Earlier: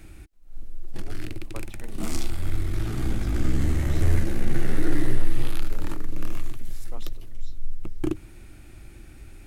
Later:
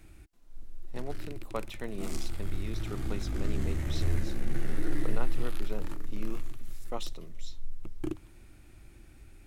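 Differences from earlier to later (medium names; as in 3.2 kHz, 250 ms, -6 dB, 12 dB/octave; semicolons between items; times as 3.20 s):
speech +7.5 dB; background -8.0 dB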